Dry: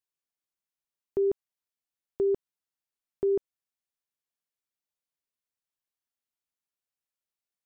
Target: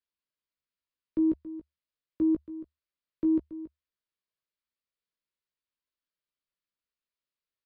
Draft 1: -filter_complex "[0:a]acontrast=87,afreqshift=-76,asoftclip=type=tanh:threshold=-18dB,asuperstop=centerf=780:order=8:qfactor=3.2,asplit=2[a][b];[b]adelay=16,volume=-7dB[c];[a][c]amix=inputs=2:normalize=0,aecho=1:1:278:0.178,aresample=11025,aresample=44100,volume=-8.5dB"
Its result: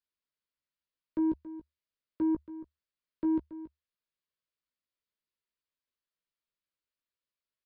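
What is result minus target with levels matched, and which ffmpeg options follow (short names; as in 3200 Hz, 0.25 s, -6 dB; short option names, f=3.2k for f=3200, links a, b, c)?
soft clip: distortion +17 dB
-filter_complex "[0:a]acontrast=87,afreqshift=-76,asoftclip=type=tanh:threshold=-7.5dB,asuperstop=centerf=780:order=8:qfactor=3.2,asplit=2[a][b];[b]adelay=16,volume=-7dB[c];[a][c]amix=inputs=2:normalize=0,aecho=1:1:278:0.178,aresample=11025,aresample=44100,volume=-8.5dB"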